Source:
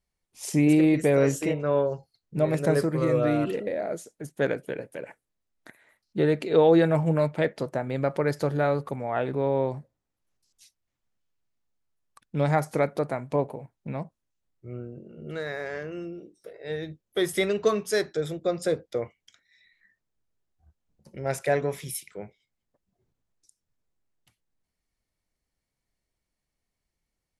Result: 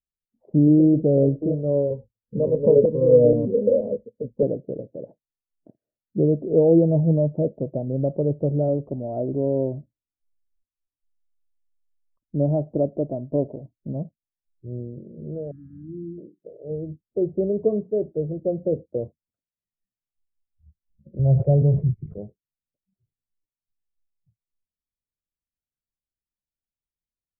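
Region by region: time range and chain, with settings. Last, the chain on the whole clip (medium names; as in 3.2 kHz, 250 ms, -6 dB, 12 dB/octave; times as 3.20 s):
1.90–4.43 s: rippled EQ curve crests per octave 0.94, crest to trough 18 dB + LFO low-pass saw down 2.1 Hz 480–5200 Hz
8.68–13.95 s: comb 3.1 ms, depth 32% + tape noise reduction on one side only decoder only
15.51–16.18 s: brick-wall FIR band-stop 360–1200 Hz + hum notches 50/100/150 Hz
21.19–22.18 s: resonant low shelf 190 Hz +10.5 dB, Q 1.5 + decay stretcher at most 51 dB/s
whole clip: spectral noise reduction 21 dB; Chebyshev low-pass 620 Hz, order 4; bass shelf 350 Hz +7.5 dB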